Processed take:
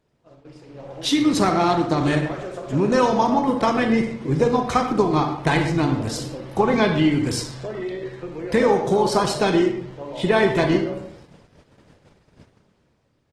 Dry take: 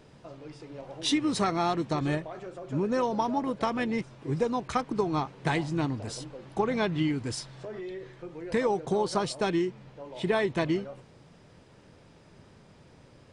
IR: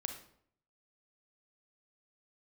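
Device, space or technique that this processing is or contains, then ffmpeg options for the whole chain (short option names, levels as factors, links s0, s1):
speakerphone in a meeting room: -filter_complex "[0:a]asettb=1/sr,asplit=3[s0][s1][s2];[s0]atrim=end=2.064[s3];[s1]atrim=start=2.06:end=3.14,asetpts=PTS-STARTPTS,afade=t=in:d=0.004:c=qsin,afade=t=out:st=1.076:d=0.004:c=qsin,highshelf=f=2000:g=6[s4];[s2]atrim=start=3.136[s5];[s3][s4]acrossfade=d=0.004:c1=hsin:c2=qsin[s6];[s6][s5]acrossfade=d=0.004:c1=qsin:c2=hsin[s7];[1:a]atrim=start_sample=2205[s8];[s7][s8]afir=irnorm=-1:irlink=0,asplit=2[s9][s10];[s10]adelay=130,highpass=300,lowpass=3400,asoftclip=type=hard:threshold=0.075,volume=0.2[s11];[s9][s11]amix=inputs=2:normalize=0,dynaudnorm=f=110:g=17:m=3.16,agate=range=0.251:threshold=0.00631:ratio=16:detection=peak" -ar 48000 -c:a libopus -b:a 16k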